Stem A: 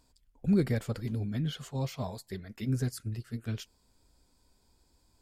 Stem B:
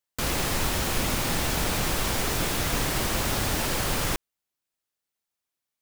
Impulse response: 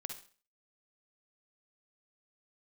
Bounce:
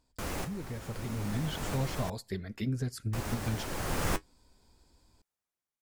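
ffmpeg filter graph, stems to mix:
-filter_complex "[0:a]acompressor=threshold=-33dB:ratio=5,volume=-6dB,asplit=3[link_01][link_02][link_03];[link_02]volume=-21dB[link_04];[1:a]equalizer=frequency=3600:width_type=o:width=1.4:gain=-6.5,flanger=delay=9.6:depth=2:regen=-48:speed=0.62:shape=triangular,volume=-3.5dB,asplit=3[link_05][link_06][link_07];[link_05]atrim=end=2.1,asetpts=PTS-STARTPTS,afade=type=out:start_time=2.096:duration=0.004:curve=hsin[link_08];[link_06]atrim=start=2.1:end=3.13,asetpts=PTS-STARTPTS,volume=0[link_09];[link_07]atrim=start=3.13,asetpts=PTS-STARTPTS,afade=type=in:duration=0.004:curve=hsin[link_10];[link_08][link_09][link_10]concat=n=3:v=0:a=1[link_11];[link_03]apad=whole_len=256615[link_12];[link_11][link_12]sidechaincompress=threshold=-51dB:ratio=12:attack=29:release=923[link_13];[2:a]atrim=start_sample=2205[link_14];[link_04][link_14]afir=irnorm=-1:irlink=0[link_15];[link_01][link_13][link_15]amix=inputs=3:normalize=0,highshelf=frequency=9800:gain=-8.5,dynaudnorm=framelen=440:gausssize=5:maxgain=9.5dB"

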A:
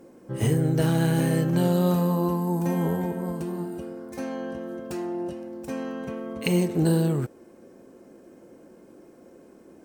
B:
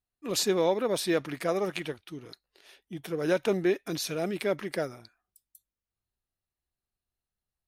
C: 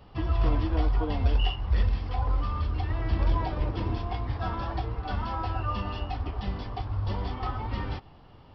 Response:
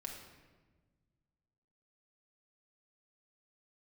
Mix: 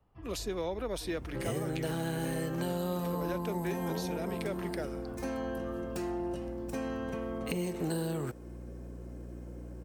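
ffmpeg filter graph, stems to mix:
-filter_complex "[0:a]aeval=exprs='val(0)+0.00891*(sin(2*PI*60*n/s)+sin(2*PI*2*60*n/s)/2+sin(2*PI*3*60*n/s)/3+sin(2*PI*4*60*n/s)/4+sin(2*PI*5*60*n/s)/5)':channel_layout=same,adelay=1050,volume=-1.5dB[link_01];[1:a]volume=-4dB[link_02];[2:a]equalizer=frequency=4100:width_type=o:width=0.99:gain=-12.5,volume=-18.5dB[link_03];[link_01][link_02][link_03]amix=inputs=3:normalize=0,acrossover=split=260|660[link_04][link_05][link_06];[link_04]acompressor=threshold=-40dB:ratio=4[link_07];[link_05]acompressor=threshold=-37dB:ratio=4[link_08];[link_06]acompressor=threshold=-40dB:ratio=4[link_09];[link_07][link_08][link_09]amix=inputs=3:normalize=0"

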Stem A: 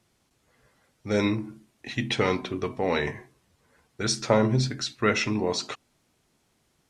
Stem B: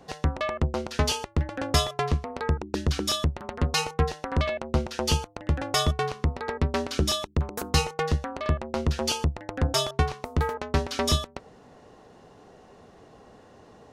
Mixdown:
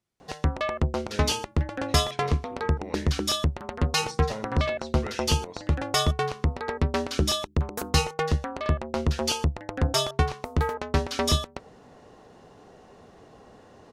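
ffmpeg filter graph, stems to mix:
ffmpeg -i stem1.wav -i stem2.wav -filter_complex "[0:a]volume=-15.5dB[link_01];[1:a]adelay=200,volume=0.5dB[link_02];[link_01][link_02]amix=inputs=2:normalize=0" out.wav

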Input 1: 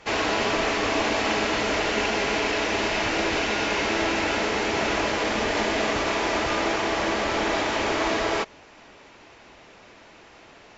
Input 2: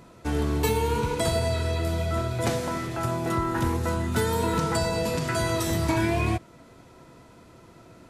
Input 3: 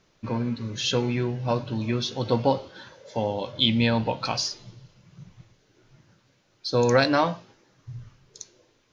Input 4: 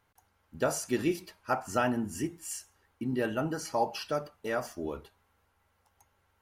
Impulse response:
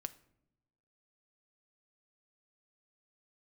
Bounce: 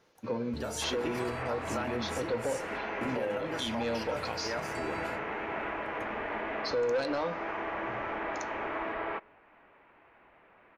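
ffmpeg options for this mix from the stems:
-filter_complex "[0:a]lowpass=frequency=2500:width=0.5412,lowpass=frequency=2500:width=1.3066,equalizer=frequency=1200:width=0.54:gain=6.5,adelay=750,volume=-17dB,asplit=2[link_01][link_02];[link_02]volume=-6dB[link_03];[1:a]volume=-16dB[link_04];[2:a]highpass=180,equalizer=frequency=490:width=3.7:gain=10,asoftclip=type=tanh:threshold=-13dB,volume=-4.5dB[link_05];[3:a]lowshelf=frequency=250:gain=-8.5,acompressor=threshold=-29dB:ratio=6,volume=2.5dB,asplit=2[link_06][link_07];[link_07]apad=whole_len=357183[link_08];[link_04][link_08]sidechaingate=range=-33dB:threshold=-58dB:ratio=16:detection=peak[link_09];[4:a]atrim=start_sample=2205[link_10];[link_03][link_10]afir=irnorm=-1:irlink=0[link_11];[link_01][link_09][link_05][link_06][link_11]amix=inputs=5:normalize=0,highshelf=frequency=11000:gain=-9.5,alimiter=limit=-23.5dB:level=0:latency=1:release=248"

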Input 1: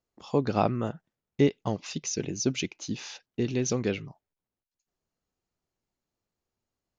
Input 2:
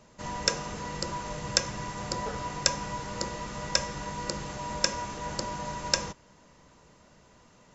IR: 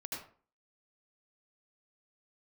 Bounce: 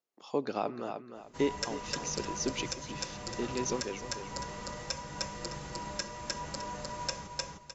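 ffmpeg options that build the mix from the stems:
-filter_complex "[0:a]highpass=290,volume=-4.5dB,asplit=3[link_01][link_02][link_03];[link_02]volume=-22dB[link_04];[link_03]volume=-10dB[link_05];[1:a]asplit=2[link_06][link_07];[link_07]adelay=6.1,afreqshift=1.4[link_08];[link_06][link_08]amix=inputs=2:normalize=1,adelay=1150,volume=-3.5dB,asplit=2[link_09][link_10];[link_10]volume=-3.5dB[link_11];[2:a]atrim=start_sample=2205[link_12];[link_04][link_12]afir=irnorm=-1:irlink=0[link_13];[link_05][link_11]amix=inputs=2:normalize=0,aecho=0:1:305|610|915|1220:1|0.24|0.0576|0.0138[link_14];[link_01][link_09][link_13][link_14]amix=inputs=4:normalize=0,alimiter=limit=-18dB:level=0:latency=1:release=386"

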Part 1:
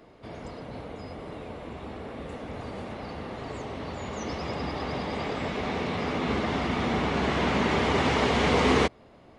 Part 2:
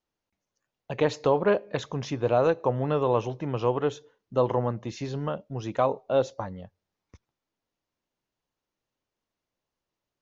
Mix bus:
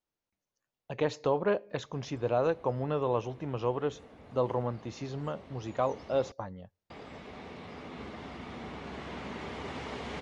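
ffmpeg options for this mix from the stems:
ffmpeg -i stem1.wav -i stem2.wav -filter_complex "[0:a]adelay=1700,volume=-15.5dB,asplit=3[link_01][link_02][link_03];[link_01]atrim=end=6.32,asetpts=PTS-STARTPTS,afade=type=out:start_time=6.316:duration=0.004:curve=hsin[link_04];[link_02]atrim=start=6.32:end=6.9,asetpts=PTS-STARTPTS,volume=0[link_05];[link_03]atrim=start=6.9,asetpts=PTS-STARTPTS,afade=type=in:duration=0.004:curve=hsin[link_06];[link_04][link_05][link_06]concat=n=3:v=0:a=1[link_07];[1:a]volume=-5.5dB[link_08];[link_07][link_08]amix=inputs=2:normalize=0" out.wav

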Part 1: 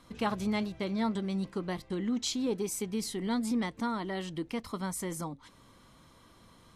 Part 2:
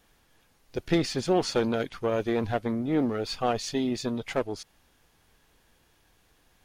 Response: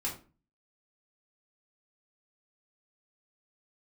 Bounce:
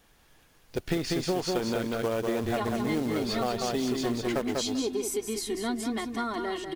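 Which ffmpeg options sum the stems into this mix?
-filter_complex "[0:a]aecho=1:1:2.8:0.91,adelay=2350,volume=1dB,asplit=2[link_01][link_02];[link_02]volume=-7.5dB[link_03];[1:a]acrusher=bits=4:mode=log:mix=0:aa=0.000001,volume=2dB,asplit=2[link_04][link_05];[link_05]volume=-4dB[link_06];[link_03][link_06]amix=inputs=2:normalize=0,aecho=0:1:193|386|579:1|0.16|0.0256[link_07];[link_01][link_04][link_07]amix=inputs=3:normalize=0,acompressor=threshold=-25dB:ratio=6"

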